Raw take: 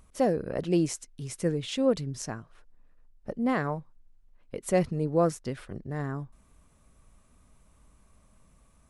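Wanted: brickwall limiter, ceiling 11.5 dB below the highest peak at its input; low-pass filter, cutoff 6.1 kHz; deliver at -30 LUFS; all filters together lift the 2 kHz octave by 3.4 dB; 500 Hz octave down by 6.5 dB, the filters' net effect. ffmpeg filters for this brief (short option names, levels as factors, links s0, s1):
-af "lowpass=6100,equalizer=f=500:t=o:g=-8,equalizer=f=2000:t=o:g=4.5,volume=2.66,alimiter=limit=0.112:level=0:latency=1"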